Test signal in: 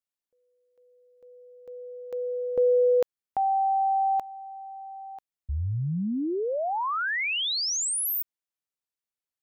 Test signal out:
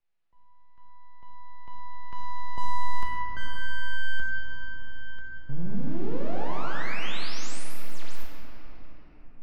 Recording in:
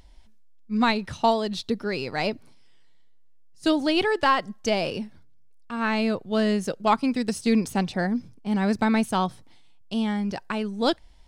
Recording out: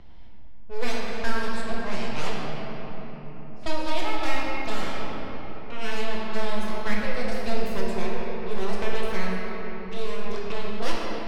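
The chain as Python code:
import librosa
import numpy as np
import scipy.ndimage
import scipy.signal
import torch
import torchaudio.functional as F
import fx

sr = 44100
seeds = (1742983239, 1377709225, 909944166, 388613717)

y = np.abs(x)
y = fx.env_lowpass(y, sr, base_hz=2800.0, full_db=-20.5)
y = fx.rider(y, sr, range_db=4, speed_s=2.0)
y = fx.room_shoebox(y, sr, seeds[0], volume_m3=180.0, walls='hard', distance_m=0.8)
y = fx.band_squash(y, sr, depth_pct=40)
y = y * librosa.db_to_amplitude(-7.5)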